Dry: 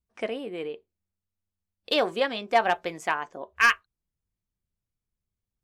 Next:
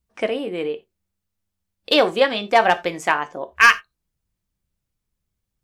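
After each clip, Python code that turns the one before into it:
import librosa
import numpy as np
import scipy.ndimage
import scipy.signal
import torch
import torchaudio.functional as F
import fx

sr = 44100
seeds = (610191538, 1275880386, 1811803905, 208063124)

y = fx.rev_gated(x, sr, seeds[0], gate_ms=110, shape='falling', drr_db=12.0)
y = y * librosa.db_to_amplitude(7.5)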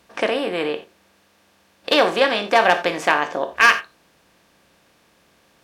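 y = fx.bin_compress(x, sr, power=0.6)
y = scipy.signal.sosfilt(scipy.signal.butter(2, 64.0, 'highpass', fs=sr, output='sos'), y)
y = y * librosa.db_to_amplitude(-2.5)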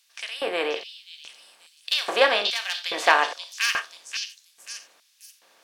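y = fx.echo_stepped(x, sr, ms=533, hz=4500.0, octaves=0.7, feedback_pct=70, wet_db=-2.5)
y = fx.filter_lfo_highpass(y, sr, shape='square', hz=1.2, low_hz=530.0, high_hz=3700.0, q=0.81)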